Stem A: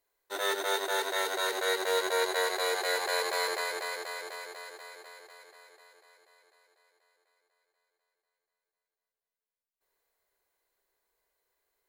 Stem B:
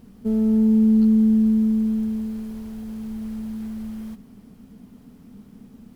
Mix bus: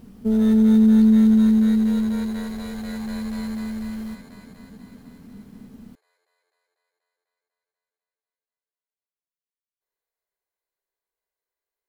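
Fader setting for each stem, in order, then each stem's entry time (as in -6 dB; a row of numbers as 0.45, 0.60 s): -11.0, +2.0 dB; 0.00, 0.00 s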